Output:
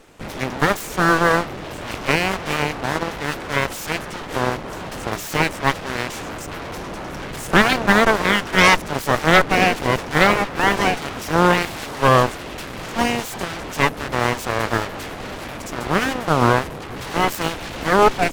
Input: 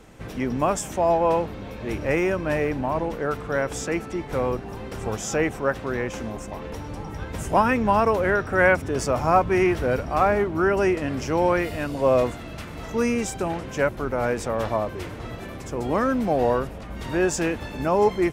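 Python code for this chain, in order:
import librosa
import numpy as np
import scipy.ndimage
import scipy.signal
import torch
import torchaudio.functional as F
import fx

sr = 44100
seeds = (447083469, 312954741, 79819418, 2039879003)

p1 = fx.fuzz(x, sr, gain_db=32.0, gate_db=-37.0)
p2 = x + F.gain(torch.from_numpy(p1), -10.5).numpy()
p3 = p2 + 10.0 ** (-23.5 / 20.0) * np.pad(p2, (int(966 * sr / 1000.0), 0))[:len(p2)]
p4 = np.abs(p3)
p5 = fx.cheby_harmonics(p4, sr, harmonics=(7,), levels_db=(-11,), full_scale_db=-4.5)
y = F.gain(torch.from_numpy(p5), 3.5).numpy()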